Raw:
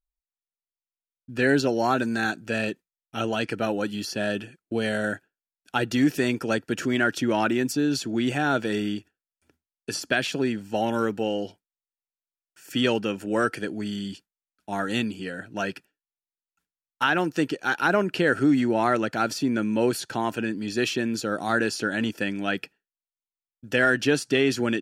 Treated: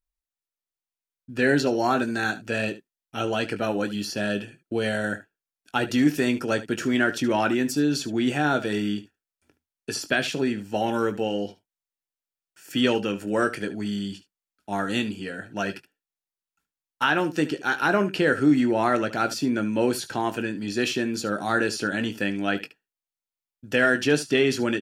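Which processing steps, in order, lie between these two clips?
early reflections 20 ms -9.5 dB, 73 ms -15.5 dB

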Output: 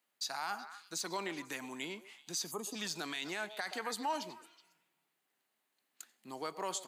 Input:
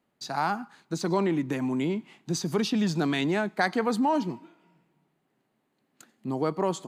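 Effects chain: differentiator; spectral gain 2.51–2.76, 1300–6300 Hz -21 dB; high shelf 4200 Hz -8.5 dB; on a send: delay with a stepping band-pass 0.124 s, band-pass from 550 Hz, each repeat 1.4 oct, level -11 dB; on the sum: limiter -36 dBFS, peak gain reduction 11.5 dB; gain +9.5 dB

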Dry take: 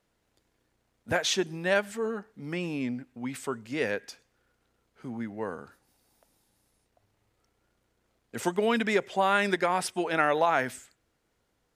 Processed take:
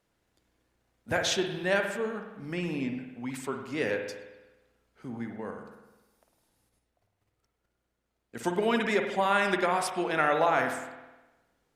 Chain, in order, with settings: 5.36–8.44 level quantiser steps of 9 dB; spring tank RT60 1.1 s, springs 51 ms, chirp 75 ms, DRR 4.5 dB; gain -1.5 dB; Opus 64 kbps 48000 Hz

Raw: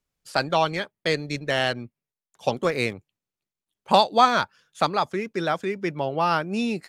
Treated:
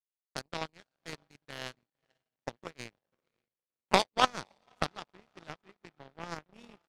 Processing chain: harmoniser -3 st -12 dB; diffused feedback echo 0.531 s, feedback 51%, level -10 dB; power-law curve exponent 3; bell 160 Hz +3.5 dB 2 oct

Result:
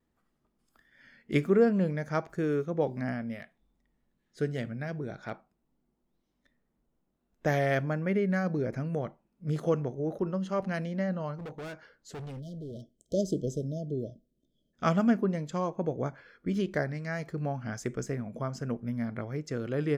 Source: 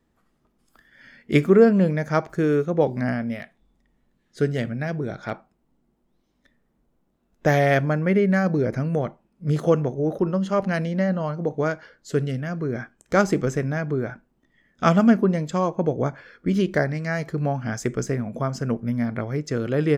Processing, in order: 11.36–12.82 overloaded stage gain 29.5 dB; vibrato 1.4 Hz 31 cents; 12.39–14.74 spectral delete 680–3000 Hz; gain -8.5 dB

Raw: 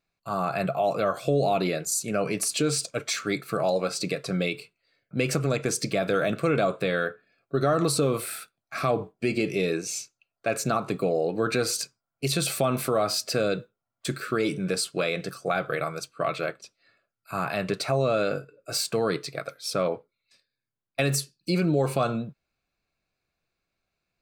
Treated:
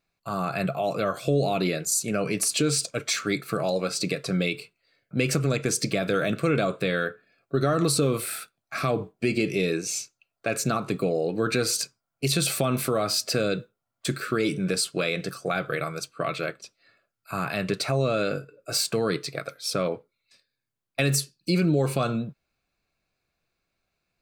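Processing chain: dynamic EQ 790 Hz, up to -6 dB, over -37 dBFS, Q 0.95; gain +2.5 dB

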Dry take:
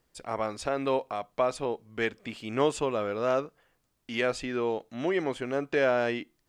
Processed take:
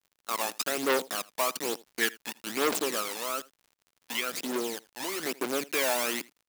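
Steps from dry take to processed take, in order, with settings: level-crossing sampler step -30 dBFS; gate -44 dBFS, range -16 dB; HPF 230 Hz 24 dB/oct; high shelf 2200 Hz +11.5 dB; 3–5.23 compressor 2.5:1, threshold -29 dBFS, peak gain reduction 7 dB; phaser 1.1 Hz, delay 1.2 ms, feedback 65%; crackle 52/s -46 dBFS; echo 81 ms -23 dB; core saturation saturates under 2400 Hz; gain -2 dB

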